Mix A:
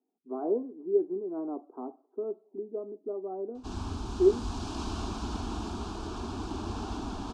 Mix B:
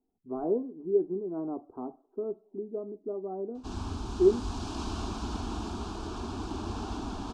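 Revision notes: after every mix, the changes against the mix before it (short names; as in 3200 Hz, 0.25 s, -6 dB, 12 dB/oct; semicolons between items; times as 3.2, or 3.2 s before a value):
speech: remove HPF 240 Hz 24 dB/oct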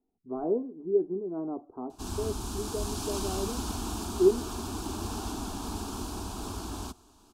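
background: entry -1.65 s; master: remove air absorption 130 m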